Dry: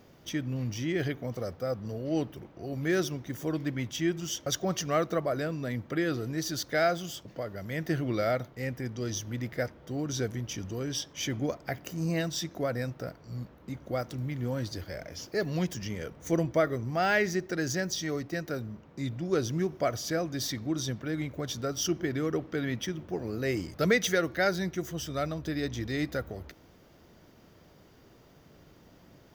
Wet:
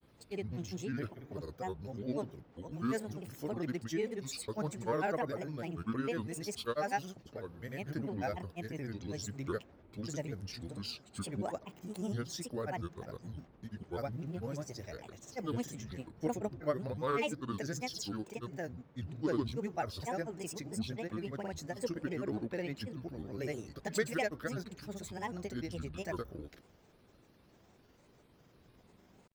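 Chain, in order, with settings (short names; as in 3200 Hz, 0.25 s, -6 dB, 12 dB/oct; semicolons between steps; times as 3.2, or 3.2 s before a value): dynamic EQ 3000 Hz, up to -6 dB, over -50 dBFS, Q 1.6; grains, pitch spread up and down by 7 st; gain -6 dB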